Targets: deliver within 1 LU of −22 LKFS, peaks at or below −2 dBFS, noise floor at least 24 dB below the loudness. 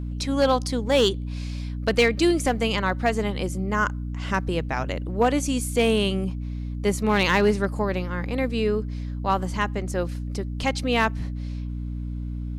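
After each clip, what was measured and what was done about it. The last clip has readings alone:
share of clipped samples 0.2%; peaks flattened at −11.5 dBFS; mains hum 60 Hz; hum harmonics up to 300 Hz; level of the hum −28 dBFS; integrated loudness −24.5 LKFS; sample peak −11.5 dBFS; target loudness −22.0 LKFS
→ clipped peaks rebuilt −11.5 dBFS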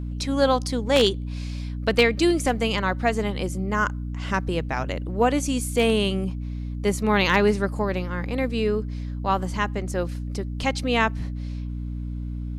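share of clipped samples 0.0%; mains hum 60 Hz; hum harmonics up to 300 Hz; level of the hum −28 dBFS
→ hum removal 60 Hz, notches 5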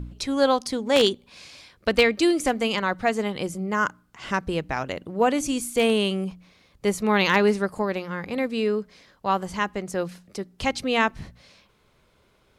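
mains hum none found; integrated loudness −24.5 LKFS; sample peak −3.0 dBFS; target loudness −22.0 LKFS
→ level +2.5 dB
brickwall limiter −2 dBFS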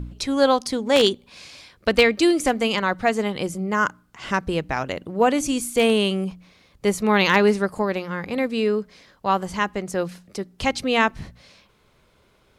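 integrated loudness −22.0 LKFS; sample peak −2.0 dBFS; background noise floor −60 dBFS

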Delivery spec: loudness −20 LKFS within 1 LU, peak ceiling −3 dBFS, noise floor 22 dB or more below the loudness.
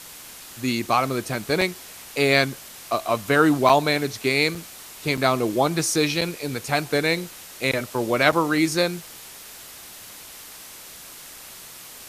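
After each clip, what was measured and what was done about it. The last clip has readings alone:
number of dropouts 6; longest dropout 4.8 ms; background noise floor −42 dBFS; target noise floor −44 dBFS; integrated loudness −22.0 LKFS; sample peak −2.5 dBFS; target loudness −20.0 LKFS
→ repair the gap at 0:01.61/0:03.69/0:04.55/0:05.17/0:06.21/0:08.32, 4.8 ms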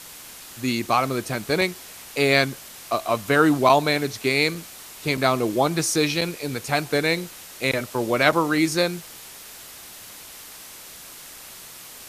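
number of dropouts 0; background noise floor −42 dBFS; target noise floor −44 dBFS
→ broadband denoise 6 dB, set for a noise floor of −42 dBFS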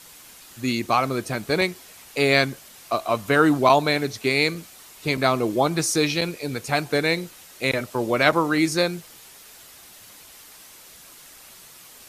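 background noise floor −47 dBFS; integrated loudness −22.0 LKFS; sample peak −2.5 dBFS; target loudness −20.0 LKFS
→ level +2 dB
brickwall limiter −3 dBFS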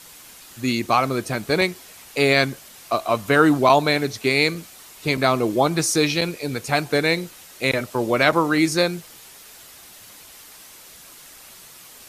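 integrated loudness −20.5 LKFS; sample peak −3.0 dBFS; background noise floor −45 dBFS

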